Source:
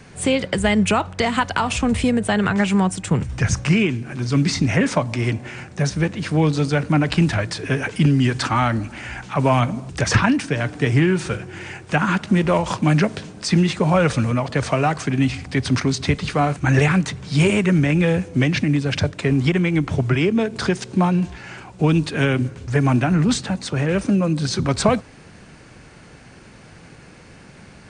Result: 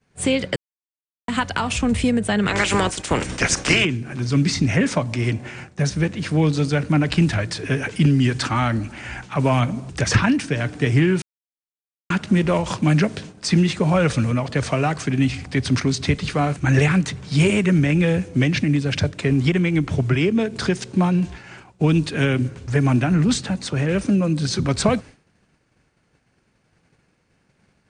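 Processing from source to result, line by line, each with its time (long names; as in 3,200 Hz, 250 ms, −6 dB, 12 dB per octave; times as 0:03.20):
0:00.56–0:01.28: silence
0:02.47–0:03.84: ceiling on every frequency bin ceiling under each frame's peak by 24 dB
0:11.22–0:12.10: silence
whole clip: downward expander −31 dBFS; dynamic equaliser 910 Hz, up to −4 dB, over −35 dBFS, Q 0.98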